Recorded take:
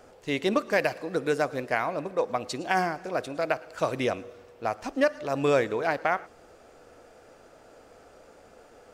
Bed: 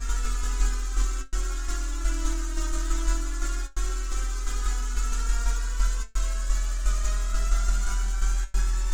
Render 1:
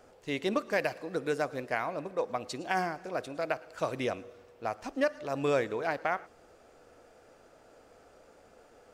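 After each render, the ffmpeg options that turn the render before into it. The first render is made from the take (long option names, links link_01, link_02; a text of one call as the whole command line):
ffmpeg -i in.wav -af "volume=-5dB" out.wav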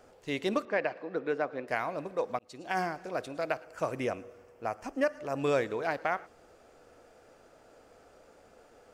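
ffmpeg -i in.wav -filter_complex "[0:a]asettb=1/sr,asplit=3[link_01][link_02][link_03];[link_01]atrim=end=0.654[link_04];[link_02]atrim=start=0.65:end=1.68,asetpts=PTS-STARTPTS,afade=type=in:duration=0.004:curve=qsin,afade=type=out:start_time=1.026:duration=0.004:curve=qsin,highpass=200,lowpass=2500[link_05];[link_03]atrim=start=1.676[link_06];[link_04][link_05]acrossfade=duration=0.004:curve1=hsin:curve2=qsin[link_07];[link_07][link_06]acrossfade=duration=0.004:curve1=qsin:curve2=hsin,asettb=1/sr,asplit=3[link_08][link_09][link_10];[link_08]atrim=end=3.644[link_11];[link_09]atrim=start=3.64:end=5.39,asetpts=PTS-STARTPTS,afade=type=in:duration=0.004:curve=qsin,afade=type=out:start_time=1.746:duration=0.004:curve=qsin,equalizer=frequency=3800:width=3.1:gain=-12[link_12];[link_10]atrim=start=5.386[link_13];[link_11][link_12]acrossfade=duration=0.004:curve1=hsin:curve2=qsin[link_14];[link_14][link_13]acrossfade=duration=0.004:curve1=qsin:curve2=hsin,asplit=2[link_15][link_16];[link_15]atrim=end=2.39,asetpts=PTS-STARTPTS,afade=type=out:start_time=2.386:duration=0.004:curve=hsin[link_17];[link_16]atrim=start=2.39,asetpts=PTS-STARTPTS,afade=type=in:duration=0.43[link_18];[link_17][link_18]concat=n=2:v=0:a=1" out.wav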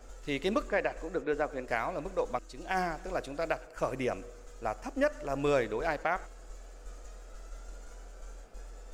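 ffmpeg -i in.wav -i bed.wav -filter_complex "[1:a]volume=-22.5dB[link_01];[0:a][link_01]amix=inputs=2:normalize=0" out.wav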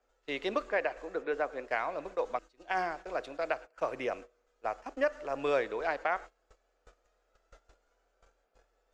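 ffmpeg -i in.wav -filter_complex "[0:a]agate=range=-18dB:threshold=-41dB:ratio=16:detection=peak,acrossover=split=330 5300:gain=0.2 1 0.158[link_01][link_02][link_03];[link_01][link_02][link_03]amix=inputs=3:normalize=0" out.wav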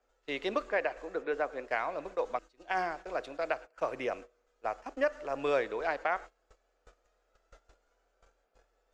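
ffmpeg -i in.wav -af anull out.wav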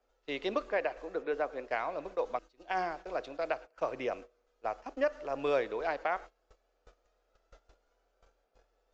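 ffmpeg -i in.wav -af "lowpass=frequency=6400:width=0.5412,lowpass=frequency=6400:width=1.3066,equalizer=frequency=1700:width_type=o:width=1.1:gain=-3.5" out.wav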